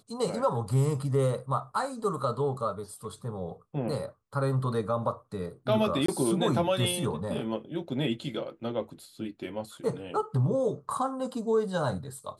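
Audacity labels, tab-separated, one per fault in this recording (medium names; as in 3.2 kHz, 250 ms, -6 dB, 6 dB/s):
6.060000	6.080000	dropout 24 ms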